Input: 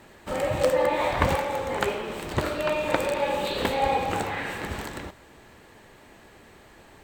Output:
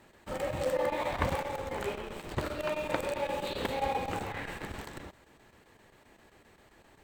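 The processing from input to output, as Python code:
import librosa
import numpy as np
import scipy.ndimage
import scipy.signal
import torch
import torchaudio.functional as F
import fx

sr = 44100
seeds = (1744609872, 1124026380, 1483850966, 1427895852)

p1 = fx.chopper(x, sr, hz=7.6, depth_pct=60, duty_pct=85)
p2 = fx.schmitt(p1, sr, flips_db=-26.0)
p3 = p1 + (p2 * 10.0 ** (-11.0 / 20.0))
y = p3 * 10.0 ** (-8.0 / 20.0)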